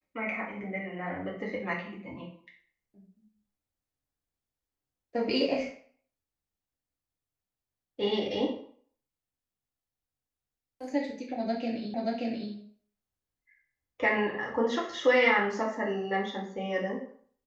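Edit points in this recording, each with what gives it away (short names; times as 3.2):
11.94 repeat of the last 0.58 s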